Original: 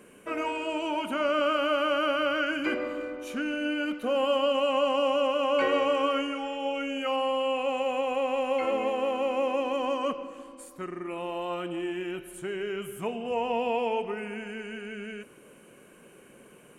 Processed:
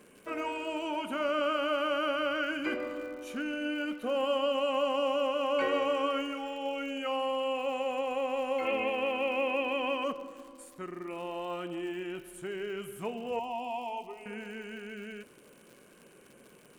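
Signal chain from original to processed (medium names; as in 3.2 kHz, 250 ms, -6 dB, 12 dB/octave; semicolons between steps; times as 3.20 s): 8.65–10.04 s: fifteen-band graphic EQ 100 Hz +11 dB, 2.5 kHz +11 dB, 6.3 kHz -10 dB; crackle 130 per s -42 dBFS; 13.39–14.26 s: static phaser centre 310 Hz, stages 8; trim -4 dB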